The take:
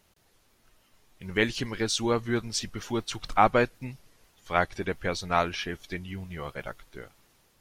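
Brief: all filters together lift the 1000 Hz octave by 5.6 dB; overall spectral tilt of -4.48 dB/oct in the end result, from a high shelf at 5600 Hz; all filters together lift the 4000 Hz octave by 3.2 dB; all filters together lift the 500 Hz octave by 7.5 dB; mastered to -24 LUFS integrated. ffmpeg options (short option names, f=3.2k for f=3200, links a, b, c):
-af "equalizer=f=500:t=o:g=8,equalizer=f=1k:t=o:g=4.5,equalizer=f=4k:t=o:g=6,highshelf=f=5.6k:g=-6,volume=-0.5dB"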